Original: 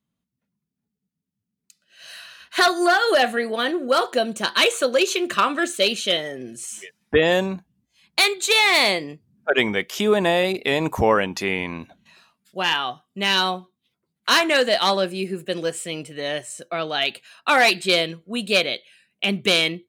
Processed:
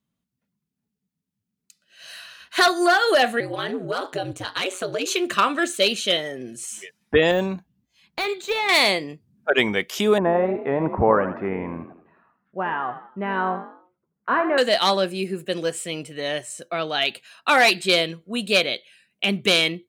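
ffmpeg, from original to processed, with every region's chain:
-filter_complex "[0:a]asettb=1/sr,asplit=3[a][b][c];[a]atrim=end=3.404[d];[b]atrim=start=3.4:end=5.06,asetpts=PTS-STARTPTS,afade=t=in:d=0.004:c=qsin,afade=t=out:st=1.656:d=0.004:c=qsin,highshelf=f=5.6k:g=-5,acompressor=threshold=-20dB:ratio=3:attack=3.2:release=140:knee=1:detection=peak,aeval=exprs='val(0)*sin(2*PI*92*n/s)':c=same[e];[c]atrim=start=5.056[f];[d][e]acrossfade=d=0.004:c1=hsin:c2=qsin[g];[g][f]acrossfade=d=0.004:c1=qsin:c2=hsin,asettb=1/sr,asplit=3[h][i][j];[h]atrim=end=7.314[k];[i]atrim=start=7.31:end=8.69,asetpts=PTS-STARTPTS,afade=t=in:d=0.004:c=qsin,afade=t=out:st=1.376:d=0.004:c=qsin,deesser=0.8,equalizer=f=9.2k:w=1.7:g=-6[l];[j]atrim=start=8.686[m];[k][l]acrossfade=d=0.004:c1=hsin:c2=qsin[n];[n][m]acrossfade=d=0.004:c1=qsin:c2=hsin,asettb=1/sr,asplit=3[o][p][q];[o]atrim=end=10.184[r];[p]atrim=start=10.18:end=14.58,asetpts=PTS-STARTPTS,afade=t=in:d=0.004:c=qsin,afade=t=out:st=4.396:d=0.004:c=qsin,lowpass=f=1.5k:w=0.5412,lowpass=f=1.5k:w=1.3066,asplit=5[s][t][u][v][w];[t]adelay=81,afreqshift=44,volume=-11dB[x];[u]adelay=162,afreqshift=88,volume=-18.7dB[y];[v]adelay=243,afreqshift=132,volume=-26.5dB[z];[w]adelay=324,afreqshift=176,volume=-34.2dB[aa];[s][x][y][z][aa]amix=inputs=5:normalize=0,atrim=end_sample=194040[ab];[q]atrim=start=14.576[ac];[r][ab]acrossfade=d=0.004:c1=hsin:c2=qsin[ad];[ad][ac]acrossfade=d=0.004:c1=qsin:c2=hsin"

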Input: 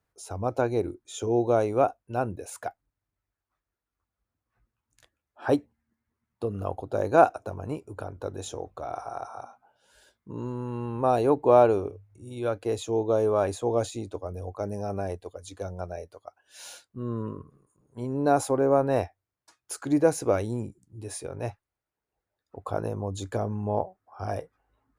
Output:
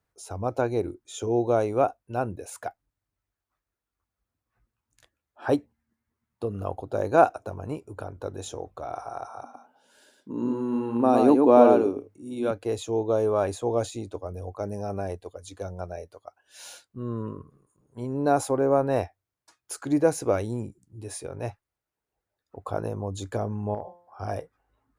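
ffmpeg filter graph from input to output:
-filter_complex "[0:a]asettb=1/sr,asplit=3[a][b][c];[a]atrim=end=9.434[d];[b]atrim=start=9.43:end=12.51,asetpts=PTS-STARTPTS,afade=t=in:d=0.004:c=qsin,afade=t=out:st=3.076:d=0.004:c=qsin,highpass=190,equalizer=f=260:w=2.5:g=12,aecho=1:1:111:0.668,atrim=end_sample=135828[e];[c]atrim=start=12.506[f];[d][e]acrossfade=d=0.004:c1=hsin:c2=qsin[g];[g][f]acrossfade=d=0.004:c1=qsin:c2=hsin,asettb=1/sr,asplit=3[h][i][j];[h]atrim=end=23.744[k];[i]atrim=start=23.74:end=24.23,asetpts=PTS-STARTPTS,afade=t=in:d=0.004:c=qsin,afade=t=out:st=0.486:d=0.004:c=qsin,bandreject=f=174.6:t=h:w=4,bandreject=f=349.2:t=h:w=4,bandreject=f=523.8:t=h:w=4,bandreject=f=698.4:t=h:w=4,bandreject=f=873:t=h:w=4,bandreject=f=1.0476k:t=h:w=4,bandreject=f=1.2222k:t=h:w=4,bandreject=f=1.3968k:t=h:w=4,bandreject=f=1.5714k:t=h:w=4,bandreject=f=1.746k:t=h:w=4,bandreject=f=1.9206k:t=h:w=4,bandreject=f=2.0952k:t=h:w=4,bandreject=f=2.2698k:t=h:w=4,bandreject=f=2.4444k:t=h:w=4,bandreject=f=2.619k:t=h:w=4,bandreject=f=2.7936k:t=h:w=4,bandreject=f=2.9682k:t=h:w=4,bandreject=f=3.1428k:t=h:w=4,bandreject=f=3.3174k:t=h:w=4,bandreject=f=3.492k:t=h:w=4,bandreject=f=3.6666k:t=h:w=4,bandreject=f=3.8412k:t=h:w=4,bandreject=f=4.0158k:t=h:w=4,bandreject=f=4.1904k:t=h:w=4,bandreject=f=4.365k:t=h:w=4,bandreject=f=4.5396k:t=h:w=4,bandreject=f=4.7142k:t=h:w=4,bandreject=f=4.8888k:t=h:w=4,bandreject=f=5.0634k:t=h:w=4,bandreject=f=5.238k:t=h:w=4,bandreject=f=5.4126k:t=h:w=4,bandreject=f=5.5872k:t=h:w=4,bandreject=f=5.7618k:t=h:w=4,bandreject=f=5.9364k:t=h:w=4,bandreject=f=6.111k:t=h:w=4,bandreject=f=6.2856k:t=h:w=4,bandreject=f=6.4602k:t=h:w=4,bandreject=f=6.6348k:t=h:w=4,acompressor=threshold=-29dB:ratio=5:attack=3.2:release=140:knee=1:detection=peak[l];[j]atrim=start=24.226[m];[k][l]acrossfade=d=0.004:c1=hsin:c2=qsin[n];[n][m]acrossfade=d=0.004:c1=qsin:c2=hsin"

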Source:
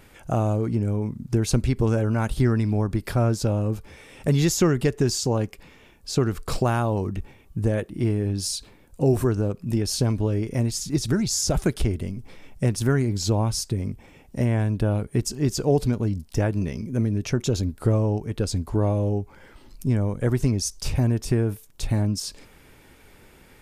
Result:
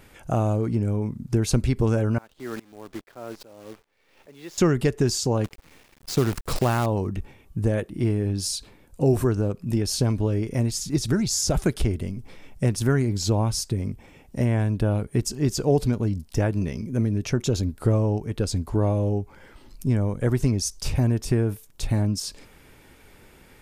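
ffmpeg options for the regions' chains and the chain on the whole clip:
-filter_complex "[0:a]asettb=1/sr,asplit=3[a][b][c];[a]atrim=end=2.184[d];[b]atrim=start=2.18:end=4.58,asetpts=PTS-STARTPTS,afade=t=in:d=0.004:c=qsin,afade=t=out:st=2.396:d=0.004:c=qsin,acrossover=split=280 4100:gain=0.0794 1 0.0708[e][f][g];[e][f][g]amix=inputs=3:normalize=0,acrusher=bits=7:dc=4:mix=0:aa=0.000001,aeval=exprs='val(0)*pow(10,-24*if(lt(mod(-2.4*n/s,1),2*abs(-2.4)/1000),1-mod(-2.4*n/s,1)/(2*abs(-2.4)/1000),(mod(-2.4*n/s,1)-2*abs(-2.4)/1000)/(1-2*abs(-2.4)/1000))/20)':c=same[h];[c]atrim=start=4.576[i];[d][h]acrossfade=d=0.004:c1=hsin:c2=qsin[j];[j][i]acrossfade=d=0.004:c1=qsin:c2=hsin,asettb=1/sr,asplit=3[k][l][m];[k]atrim=end=5.444[n];[l]atrim=start=5.44:end=6.86,asetpts=PTS-STARTPTS,afade=t=in:d=0.004:c=qsin,afade=t=out:st=1.416:d=0.004:c=qsin,highshelf=f=9.4k:g=-4.5,acrusher=bits=6:dc=4:mix=0:aa=0.000001[o];[m]atrim=start=6.856[p];[n][o]acrossfade=d=0.004:c1=hsin:c2=qsin[q];[q][p]acrossfade=d=0.004:c1=qsin:c2=hsin"

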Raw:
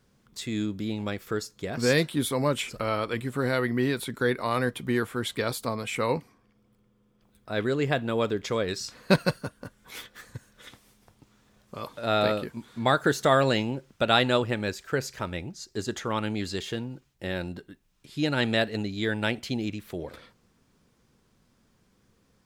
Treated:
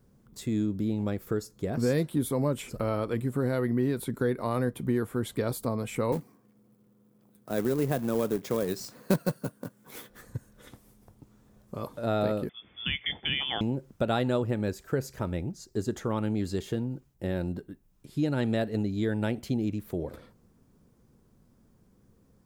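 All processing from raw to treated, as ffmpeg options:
-filter_complex "[0:a]asettb=1/sr,asplit=3[a][b][c];[a]atrim=end=6.124[d];[b]atrim=start=6.12:end=10.1,asetpts=PTS-STARTPTS,afade=t=in:d=0.004:c=qsin,afade=t=out:st=3.976:d=0.004:c=qsin,highpass=f=130:w=0.5412,highpass=f=130:w=1.3066,acrusher=bits=2:mode=log:mix=0:aa=0.000001[e];[c]atrim=start=10.096[f];[d][e]acrossfade=d=0.004:c1=hsin:c2=qsin[g];[g][f]acrossfade=d=0.004:c1=qsin:c2=hsin,asettb=1/sr,asplit=3[h][i][j];[h]atrim=end=12.494[k];[i]atrim=start=12.49:end=13.61,asetpts=PTS-STARTPTS,afade=t=in:d=0.004:c=qsin,afade=t=out:st=1.116:d=0.004:c=qsin,lowpass=f=3.1k:t=q:w=0.5098,lowpass=f=3.1k:t=q:w=0.6013,lowpass=f=3.1k:t=q:w=0.9,lowpass=f=3.1k:t=q:w=2.563,afreqshift=-3600,highpass=f=49:w=0.5412,highpass=f=49:w=1.3066,lowshelf=f=420:g=6[l];[j]atrim=start=13.606[m];[k][l]acrossfade=d=0.004:c1=hsin:c2=qsin[n];[n][m]acrossfade=d=0.004:c1=qsin:c2=hsin,equalizer=f=3.1k:w=0.34:g=-14.5,acompressor=threshold=-31dB:ratio=2,volume=5dB"

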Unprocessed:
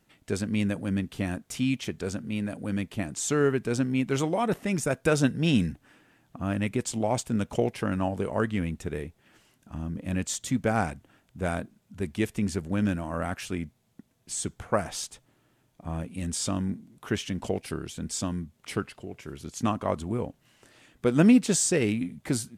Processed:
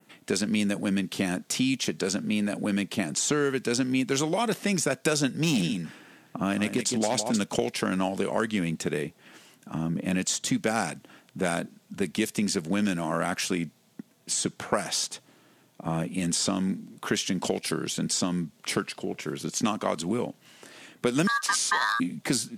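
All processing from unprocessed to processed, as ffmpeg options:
-filter_complex "[0:a]asettb=1/sr,asplit=3[a][b][c];[a]atrim=end=5.374[d];[b]atrim=start=5.37:end=7.44,asetpts=PTS-STARTPTS,afade=t=in:d=0.004:c=qsin,afade=t=out:st=2.066:d=0.004:c=qsin,aecho=1:1:159:0.316,atrim=end_sample=91287,volume=18.5dB,asoftclip=hard,volume=-18.5dB[e];[c]atrim=start=7.436[f];[d][e]acrossfade=d=0.004:c1=hsin:c2=qsin[g];[g][f]acrossfade=d=0.004:c1=qsin:c2=hsin,asettb=1/sr,asplit=3[h][i][j];[h]atrim=end=21.274[k];[i]atrim=start=21.27:end=22,asetpts=PTS-STARTPTS,afade=t=in:d=0.004:c=qsin,afade=t=out:st=0.726:d=0.004:c=qsin,acompressor=threshold=-18dB:ratio=6:attack=3.2:release=140:knee=1:detection=peak,aeval=exprs='val(0)*sin(2*PI*1400*n/s)':c=same[l];[j]atrim=start=21.996[m];[k][l]acrossfade=d=0.004:c1=hsin:c2=qsin[n];[n][m]acrossfade=d=0.004:c1=qsin:c2=hsin,highpass=f=150:w=0.5412,highpass=f=150:w=1.3066,adynamicequalizer=threshold=0.00316:dfrequency=4800:dqfactor=0.97:tfrequency=4800:tqfactor=0.97:attack=5:release=100:ratio=0.375:range=3:mode=boostabove:tftype=bell,acrossover=split=1800|4600[o][p][q];[o]acompressor=threshold=-33dB:ratio=4[r];[p]acompressor=threshold=-44dB:ratio=4[s];[q]acompressor=threshold=-38dB:ratio=4[t];[r][s][t]amix=inputs=3:normalize=0,volume=8.5dB"

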